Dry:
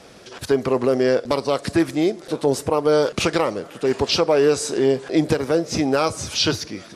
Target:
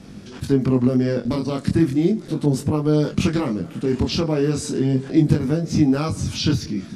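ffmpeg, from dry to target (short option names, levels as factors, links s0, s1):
-filter_complex "[0:a]lowshelf=f=340:t=q:w=1.5:g=13.5,asplit=2[s0][s1];[s1]alimiter=limit=0.133:level=0:latency=1,volume=0.794[s2];[s0][s2]amix=inputs=2:normalize=0,flanger=delay=19.5:depth=6.6:speed=0.35,volume=0.562"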